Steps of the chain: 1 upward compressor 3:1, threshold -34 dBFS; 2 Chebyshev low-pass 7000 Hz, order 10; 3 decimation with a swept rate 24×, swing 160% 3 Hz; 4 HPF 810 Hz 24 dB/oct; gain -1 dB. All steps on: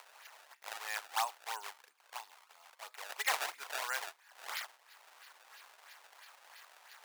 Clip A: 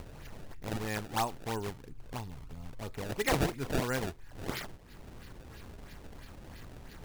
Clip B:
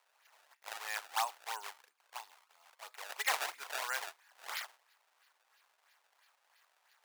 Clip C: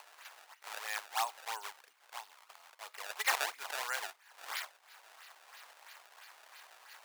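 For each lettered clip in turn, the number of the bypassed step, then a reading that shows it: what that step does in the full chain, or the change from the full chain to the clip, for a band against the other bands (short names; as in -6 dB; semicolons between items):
4, 500 Hz band +14.0 dB; 1, momentary loudness spread change -4 LU; 2, crest factor change +3.0 dB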